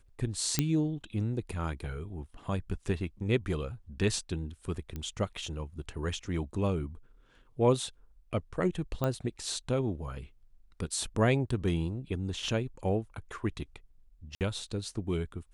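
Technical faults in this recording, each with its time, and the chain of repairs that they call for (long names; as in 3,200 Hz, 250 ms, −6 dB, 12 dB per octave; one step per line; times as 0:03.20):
0:00.59: click −10 dBFS
0:04.96: click −24 dBFS
0:09.04: click −18 dBFS
0:14.35–0:14.41: drop-out 58 ms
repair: click removal
repair the gap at 0:14.35, 58 ms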